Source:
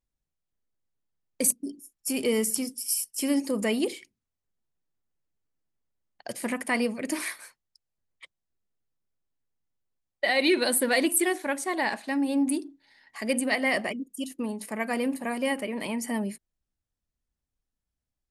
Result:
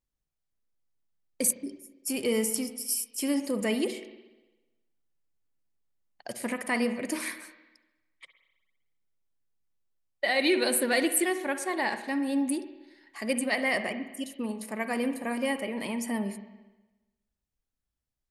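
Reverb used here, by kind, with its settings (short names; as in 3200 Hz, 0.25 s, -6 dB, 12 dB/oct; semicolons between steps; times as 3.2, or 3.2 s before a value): spring tank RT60 1.1 s, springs 51/59 ms, chirp 20 ms, DRR 9.5 dB; gain -2 dB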